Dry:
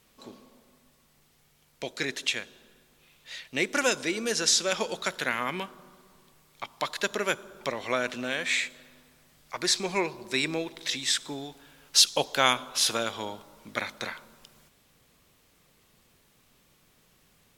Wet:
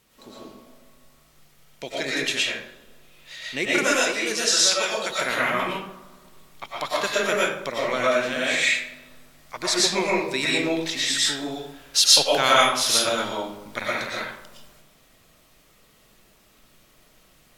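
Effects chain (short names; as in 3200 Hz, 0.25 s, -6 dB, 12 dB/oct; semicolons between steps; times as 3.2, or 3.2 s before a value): 3.82–5.1 low shelf 350 Hz -11 dB; digital reverb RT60 0.61 s, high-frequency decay 0.65×, pre-delay 75 ms, DRR -6 dB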